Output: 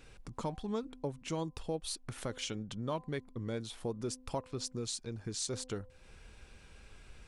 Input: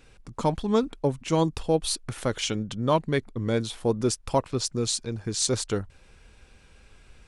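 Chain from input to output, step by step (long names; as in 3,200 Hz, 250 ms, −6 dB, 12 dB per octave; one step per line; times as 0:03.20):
hum removal 255.5 Hz, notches 4
downward compressor 2 to 1, threshold −42 dBFS, peak gain reduction 13.5 dB
level −1.5 dB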